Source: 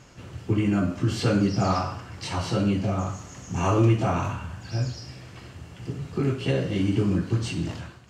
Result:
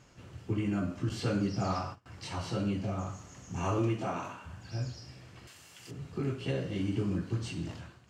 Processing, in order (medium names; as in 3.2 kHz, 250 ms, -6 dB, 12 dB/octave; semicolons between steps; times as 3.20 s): 1.09–2.06 s: gate -31 dBFS, range -24 dB; 3.78–4.45 s: high-pass 110 Hz -> 330 Hz 12 dB/octave; 5.47–5.91 s: tilt EQ +4.5 dB/octave; trim -8.5 dB